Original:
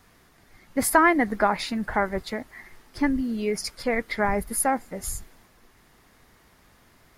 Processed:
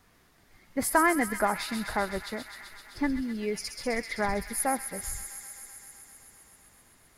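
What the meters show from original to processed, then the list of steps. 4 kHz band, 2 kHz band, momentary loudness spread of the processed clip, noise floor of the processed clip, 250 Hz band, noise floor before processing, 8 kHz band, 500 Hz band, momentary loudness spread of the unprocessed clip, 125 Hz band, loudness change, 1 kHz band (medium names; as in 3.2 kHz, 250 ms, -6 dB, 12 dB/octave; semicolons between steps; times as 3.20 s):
-2.5 dB, -4.5 dB, 20 LU, -62 dBFS, -5.0 dB, -59 dBFS, -2.5 dB, -5.0 dB, 14 LU, -5.0 dB, -5.0 dB, -5.0 dB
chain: feedback echo behind a high-pass 129 ms, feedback 82%, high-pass 2.3 kHz, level -6 dB; trim -5 dB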